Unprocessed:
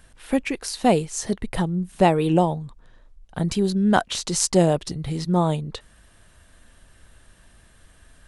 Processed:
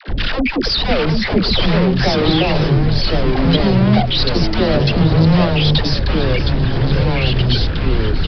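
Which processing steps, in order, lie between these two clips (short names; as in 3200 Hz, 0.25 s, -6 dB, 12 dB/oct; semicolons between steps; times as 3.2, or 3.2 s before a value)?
formant sharpening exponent 2; treble ducked by the level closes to 1300 Hz, closed at -17 dBFS; compressor 4:1, threshold -36 dBFS, peak gain reduction 19.5 dB; fuzz box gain 59 dB, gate -57 dBFS; bell 1400 Hz -5.5 dB 2.4 oct; dispersion lows, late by 87 ms, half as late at 480 Hz; on a send: frequency-shifting echo 0.451 s, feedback 65%, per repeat -63 Hz, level -13 dB; on the sum: echoes that change speed 0.674 s, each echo -3 st, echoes 2; downsampling 11025 Hz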